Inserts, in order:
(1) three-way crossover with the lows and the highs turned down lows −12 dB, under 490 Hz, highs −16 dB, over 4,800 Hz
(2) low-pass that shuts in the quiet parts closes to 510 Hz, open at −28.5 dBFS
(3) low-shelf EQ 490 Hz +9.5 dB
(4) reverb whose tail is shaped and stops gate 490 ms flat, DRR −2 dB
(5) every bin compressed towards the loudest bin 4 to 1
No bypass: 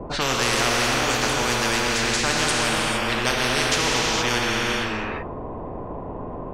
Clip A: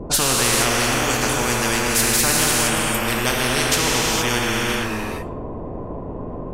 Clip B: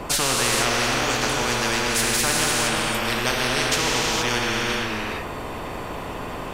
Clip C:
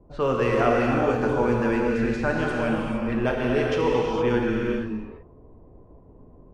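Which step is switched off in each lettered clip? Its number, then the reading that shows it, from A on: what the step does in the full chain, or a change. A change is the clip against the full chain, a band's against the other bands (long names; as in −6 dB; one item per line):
1, 8 kHz band +5.5 dB
2, 8 kHz band +3.0 dB
5, 4 kHz band −19.5 dB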